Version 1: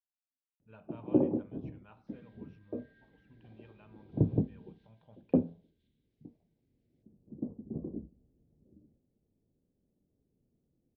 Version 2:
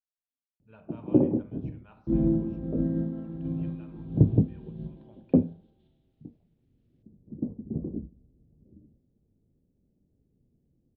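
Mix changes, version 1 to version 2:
speech: send +10.0 dB
first sound: add low-shelf EQ 300 Hz +10 dB
second sound: remove Chebyshev high-pass with heavy ripple 1,500 Hz, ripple 6 dB

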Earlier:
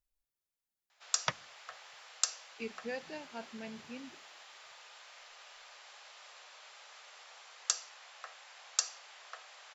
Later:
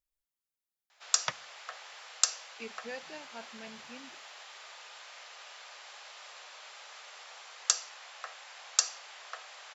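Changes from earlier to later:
speech: add low-shelf EQ 420 Hz −6 dB
background +5.0 dB

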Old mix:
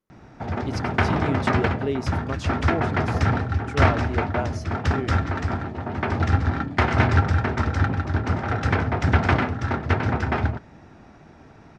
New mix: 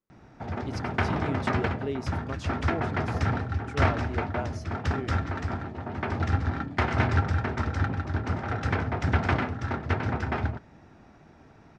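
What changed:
speech −6.0 dB
background −5.5 dB

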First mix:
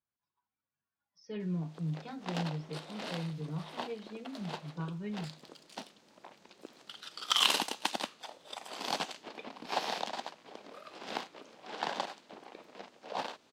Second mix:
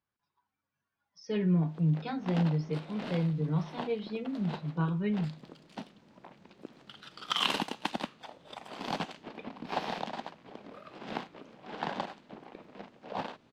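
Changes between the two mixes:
speech +8.5 dB
background: add bass and treble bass +13 dB, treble −11 dB

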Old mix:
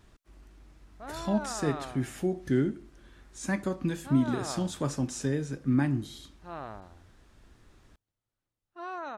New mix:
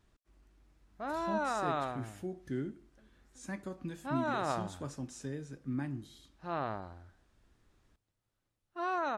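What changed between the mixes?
speech −11.0 dB
background +4.5 dB

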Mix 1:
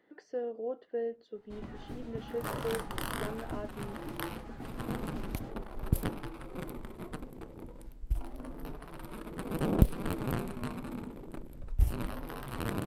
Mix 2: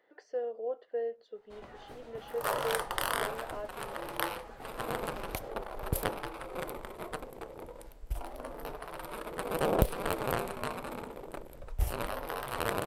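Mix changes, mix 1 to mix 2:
second sound +6.0 dB
master: add low shelf with overshoot 370 Hz −10 dB, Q 1.5

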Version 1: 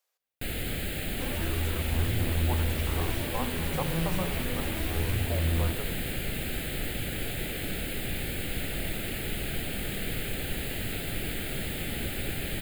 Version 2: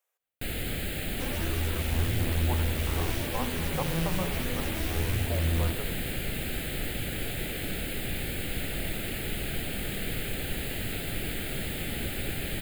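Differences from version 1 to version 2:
speech: add parametric band 4,600 Hz −11.5 dB 0.6 octaves
second sound: add high-shelf EQ 4,700 Hz +11.5 dB

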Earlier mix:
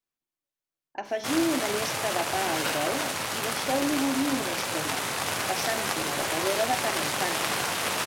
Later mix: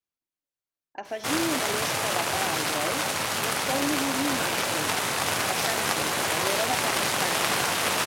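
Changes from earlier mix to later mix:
first sound +3.0 dB
second sound: entry +1.75 s
reverb: off

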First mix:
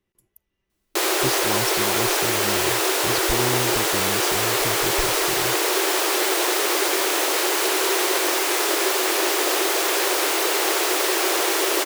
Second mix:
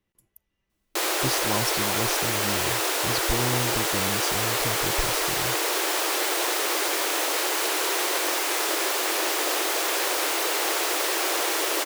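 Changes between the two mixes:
background −3.5 dB
master: add parametric band 380 Hz −7.5 dB 0.22 octaves

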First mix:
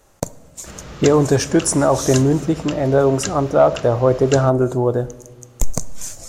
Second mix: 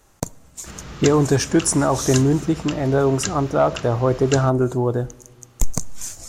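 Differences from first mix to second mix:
speech: send −6.0 dB
master: add parametric band 560 Hz −6.5 dB 0.59 octaves

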